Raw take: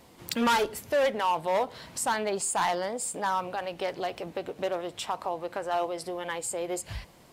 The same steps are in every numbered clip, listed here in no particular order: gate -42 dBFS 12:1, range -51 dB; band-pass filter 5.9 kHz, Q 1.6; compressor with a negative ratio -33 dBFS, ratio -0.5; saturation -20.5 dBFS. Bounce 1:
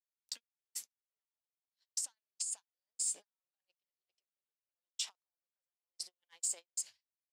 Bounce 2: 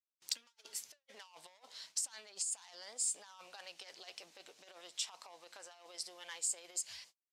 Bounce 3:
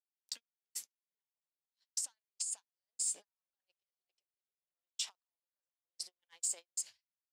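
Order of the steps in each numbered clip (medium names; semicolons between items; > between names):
compressor with a negative ratio > band-pass filter > saturation > gate; saturation > compressor with a negative ratio > gate > band-pass filter; compressor with a negative ratio > band-pass filter > gate > saturation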